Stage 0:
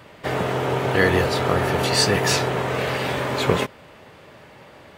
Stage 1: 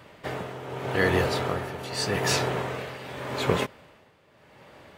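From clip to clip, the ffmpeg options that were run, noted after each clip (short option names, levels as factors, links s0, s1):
-af "tremolo=f=0.83:d=0.72,volume=0.631"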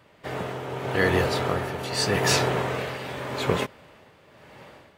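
-af "dynaudnorm=f=100:g=7:m=4.47,volume=0.447"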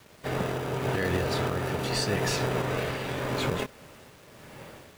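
-filter_complex "[0:a]asplit=2[s0][s1];[s1]acrusher=samples=41:mix=1:aa=0.000001,volume=0.501[s2];[s0][s2]amix=inputs=2:normalize=0,alimiter=limit=0.133:level=0:latency=1:release=218,acrusher=bits=8:mix=0:aa=0.000001"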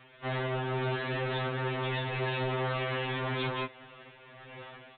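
-af "lowshelf=f=470:g=-9,aresample=8000,asoftclip=type=hard:threshold=0.0211,aresample=44100,afftfilt=real='re*2.45*eq(mod(b,6),0)':imag='im*2.45*eq(mod(b,6),0)':win_size=2048:overlap=0.75,volume=1.68"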